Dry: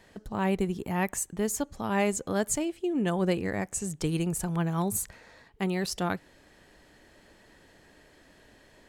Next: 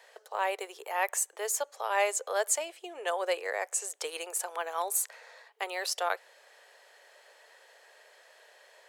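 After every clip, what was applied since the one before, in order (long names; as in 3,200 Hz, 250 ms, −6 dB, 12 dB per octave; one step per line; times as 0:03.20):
Butterworth high-pass 470 Hz 48 dB per octave
level +2 dB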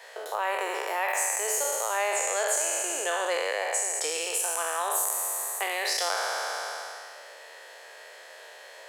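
peak hold with a decay on every bin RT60 2.09 s
downward compressor 2.5 to 1, threshold −37 dBFS, peak gain reduction 12 dB
level +7.5 dB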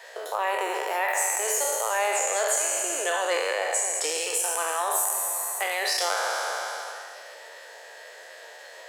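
spectral magnitudes quantised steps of 15 dB
delay that swaps between a low-pass and a high-pass 216 ms, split 1,400 Hz, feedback 55%, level −13 dB
level +2.5 dB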